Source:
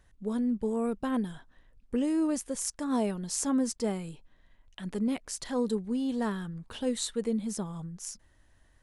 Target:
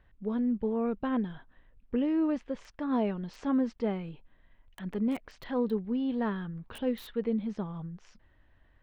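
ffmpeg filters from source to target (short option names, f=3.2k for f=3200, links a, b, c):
-filter_complex "[0:a]lowpass=f=3.2k:w=0.5412,lowpass=f=3.2k:w=1.3066,acrossover=split=2400[a][b];[b]aeval=exprs='(mod(141*val(0)+1,2)-1)/141':c=same[c];[a][c]amix=inputs=2:normalize=0"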